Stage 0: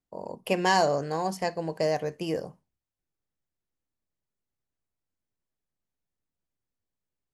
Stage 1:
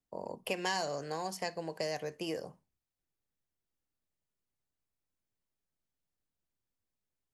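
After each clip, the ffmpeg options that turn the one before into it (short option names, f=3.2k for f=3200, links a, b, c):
-filter_complex "[0:a]acrossover=split=300|1800[a][b][c];[a]acompressor=threshold=-47dB:ratio=4[d];[b]acompressor=threshold=-34dB:ratio=4[e];[c]acompressor=threshold=-33dB:ratio=4[f];[d][e][f]amix=inputs=3:normalize=0,volume=-2dB"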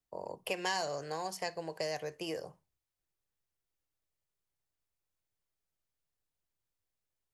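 -af "equalizer=f=230:t=o:w=0.55:g=-10.5"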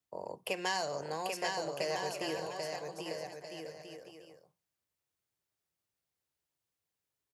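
-filter_complex "[0:a]highpass=83,asplit=2[a][b];[b]aecho=0:1:790|1304|1637|1854|1995:0.631|0.398|0.251|0.158|0.1[c];[a][c]amix=inputs=2:normalize=0"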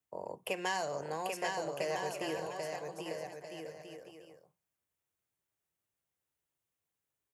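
-af "equalizer=f=4.6k:t=o:w=0.64:g=-7.5"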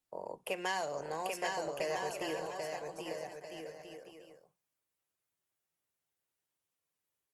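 -af "lowshelf=f=100:g=-12" -ar 48000 -c:a libopus -b:a 24k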